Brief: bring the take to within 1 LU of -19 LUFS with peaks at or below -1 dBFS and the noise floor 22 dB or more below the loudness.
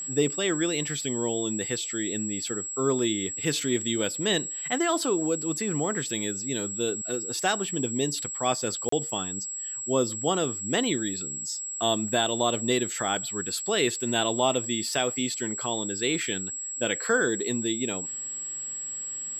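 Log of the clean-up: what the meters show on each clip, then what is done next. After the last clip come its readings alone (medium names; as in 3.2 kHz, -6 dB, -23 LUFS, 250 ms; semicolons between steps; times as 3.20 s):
dropouts 1; longest dropout 34 ms; steady tone 7.7 kHz; tone level -32 dBFS; loudness -27.0 LUFS; peak level -11.0 dBFS; loudness target -19.0 LUFS
-> interpolate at 8.89 s, 34 ms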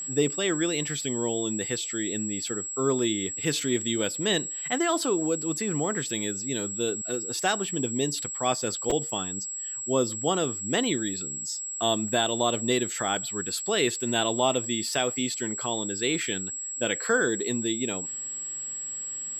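dropouts 0; steady tone 7.7 kHz; tone level -32 dBFS
-> band-stop 7.7 kHz, Q 30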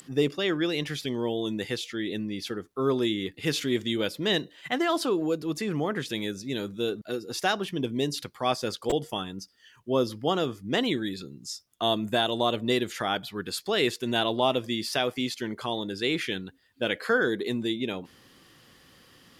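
steady tone not found; loudness -28.5 LUFS; peak level -11.5 dBFS; loudness target -19.0 LUFS
-> trim +9.5 dB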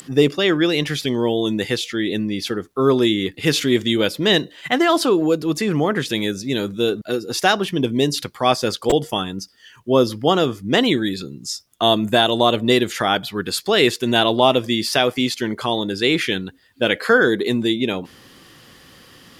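loudness -19.0 LUFS; peak level -2.0 dBFS; noise floor -49 dBFS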